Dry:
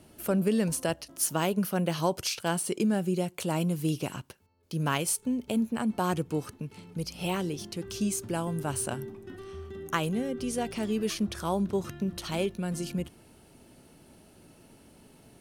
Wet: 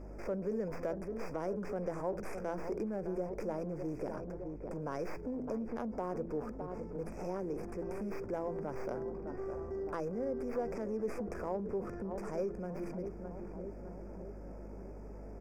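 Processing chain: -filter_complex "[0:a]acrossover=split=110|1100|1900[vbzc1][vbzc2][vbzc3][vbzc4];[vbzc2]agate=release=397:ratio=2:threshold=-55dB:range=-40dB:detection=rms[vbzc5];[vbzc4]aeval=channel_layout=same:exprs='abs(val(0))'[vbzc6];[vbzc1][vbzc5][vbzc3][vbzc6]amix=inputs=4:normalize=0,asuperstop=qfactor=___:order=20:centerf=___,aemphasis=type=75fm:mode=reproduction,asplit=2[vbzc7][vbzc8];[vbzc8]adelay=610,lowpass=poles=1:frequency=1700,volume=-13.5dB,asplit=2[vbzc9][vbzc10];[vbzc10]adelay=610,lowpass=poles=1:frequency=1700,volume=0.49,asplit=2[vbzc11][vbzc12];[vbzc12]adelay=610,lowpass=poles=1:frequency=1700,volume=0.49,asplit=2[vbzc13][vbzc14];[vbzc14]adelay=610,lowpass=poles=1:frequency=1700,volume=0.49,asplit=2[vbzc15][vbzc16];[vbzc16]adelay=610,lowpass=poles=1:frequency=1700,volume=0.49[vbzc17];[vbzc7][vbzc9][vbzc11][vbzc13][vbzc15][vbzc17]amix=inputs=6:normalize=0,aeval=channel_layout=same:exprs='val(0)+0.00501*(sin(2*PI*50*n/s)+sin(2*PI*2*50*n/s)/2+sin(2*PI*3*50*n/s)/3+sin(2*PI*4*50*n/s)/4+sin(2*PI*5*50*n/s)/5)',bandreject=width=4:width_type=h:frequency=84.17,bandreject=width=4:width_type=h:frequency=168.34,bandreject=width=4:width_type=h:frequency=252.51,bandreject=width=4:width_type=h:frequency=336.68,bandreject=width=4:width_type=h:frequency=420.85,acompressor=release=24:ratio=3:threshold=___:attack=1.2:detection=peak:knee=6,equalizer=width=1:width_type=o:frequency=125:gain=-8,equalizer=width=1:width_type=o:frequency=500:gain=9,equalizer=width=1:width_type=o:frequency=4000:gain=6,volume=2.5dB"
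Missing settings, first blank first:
1.6, 3500, -44dB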